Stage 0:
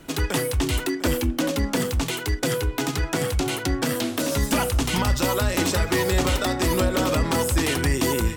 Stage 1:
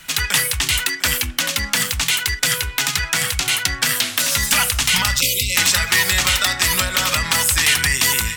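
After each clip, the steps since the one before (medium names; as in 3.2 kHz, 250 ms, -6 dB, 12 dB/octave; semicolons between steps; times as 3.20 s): spectral selection erased 5.21–5.55 s, 570–2000 Hz; FFT filter 200 Hz 0 dB, 310 Hz -13 dB, 1.9 kHz +15 dB; trim -3 dB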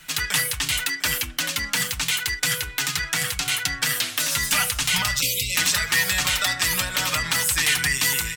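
comb 6.6 ms, depth 54%; trim -6 dB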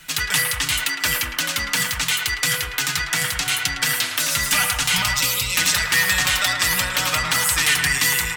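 band-passed feedback delay 109 ms, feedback 71%, band-pass 1.1 kHz, level -4 dB; trim +2 dB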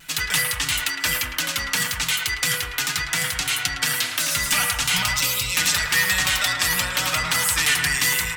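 vibrato 1 Hz 23 cents; de-hum 67.5 Hz, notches 31; trim -1.5 dB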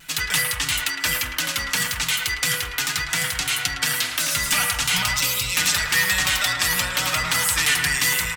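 delay 1094 ms -18 dB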